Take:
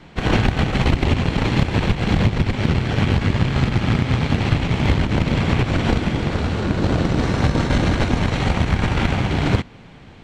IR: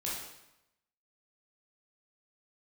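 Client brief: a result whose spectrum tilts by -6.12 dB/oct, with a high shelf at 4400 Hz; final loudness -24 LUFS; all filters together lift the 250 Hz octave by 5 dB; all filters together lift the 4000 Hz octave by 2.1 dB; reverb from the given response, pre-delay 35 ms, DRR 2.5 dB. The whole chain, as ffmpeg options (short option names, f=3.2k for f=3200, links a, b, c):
-filter_complex "[0:a]equalizer=f=250:t=o:g=6.5,equalizer=f=4k:t=o:g=5,highshelf=f=4.4k:g=-4.5,asplit=2[a][b];[1:a]atrim=start_sample=2205,adelay=35[c];[b][c]afir=irnorm=-1:irlink=0,volume=-6dB[d];[a][d]amix=inputs=2:normalize=0,volume=-8.5dB"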